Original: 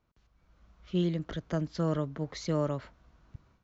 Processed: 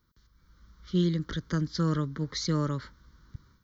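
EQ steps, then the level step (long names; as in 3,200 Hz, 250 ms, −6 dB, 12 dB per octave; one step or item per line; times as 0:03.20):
high-shelf EQ 4,600 Hz +11.5 dB
phaser with its sweep stopped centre 2,600 Hz, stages 6
+4.5 dB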